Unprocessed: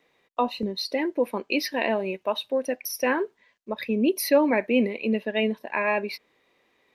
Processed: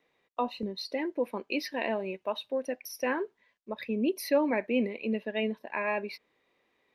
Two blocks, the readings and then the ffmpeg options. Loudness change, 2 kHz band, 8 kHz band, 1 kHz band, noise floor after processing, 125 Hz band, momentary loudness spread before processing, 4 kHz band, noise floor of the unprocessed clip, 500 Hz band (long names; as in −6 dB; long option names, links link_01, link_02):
−6.0 dB, −6.5 dB, −10.0 dB, −6.0 dB, −75 dBFS, can't be measured, 9 LU, −7.5 dB, −68 dBFS, −6.0 dB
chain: -af "highshelf=frequency=6500:gain=-6.5,volume=-6dB"